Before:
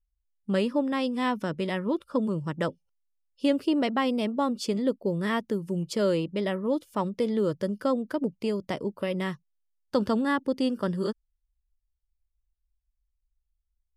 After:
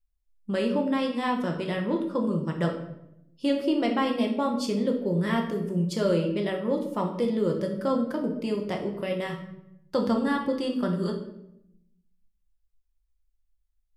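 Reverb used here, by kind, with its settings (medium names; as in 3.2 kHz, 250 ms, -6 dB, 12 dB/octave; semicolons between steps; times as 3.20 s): simulated room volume 210 m³, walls mixed, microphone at 0.86 m; trim -2 dB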